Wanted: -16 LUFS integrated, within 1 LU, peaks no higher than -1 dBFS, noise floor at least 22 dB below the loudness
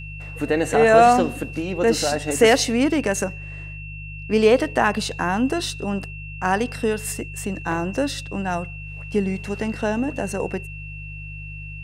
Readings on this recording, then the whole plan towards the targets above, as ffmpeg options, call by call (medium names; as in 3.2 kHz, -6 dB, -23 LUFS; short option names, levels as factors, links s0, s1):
hum 50 Hz; highest harmonic 150 Hz; hum level -33 dBFS; steady tone 2.7 kHz; tone level -37 dBFS; loudness -21.5 LUFS; peak level -2.5 dBFS; loudness target -16.0 LUFS
-> -af "bandreject=f=50:t=h:w=4,bandreject=f=100:t=h:w=4,bandreject=f=150:t=h:w=4"
-af "bandreject=f=2700:w=30"
-af "volume=1.88,alimiter=limit=0.891:level=0:latency=1"